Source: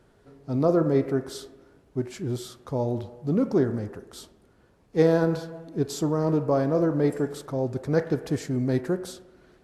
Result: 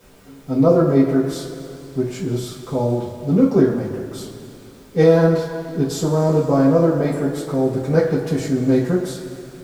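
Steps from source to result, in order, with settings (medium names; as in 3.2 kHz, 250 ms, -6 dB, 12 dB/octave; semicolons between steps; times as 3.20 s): added noise pink -58 dBFS; two-slope reverb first 0.25 s, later 2.9 s, from -17 dB, DRR -8 dB; trim -1.5 dB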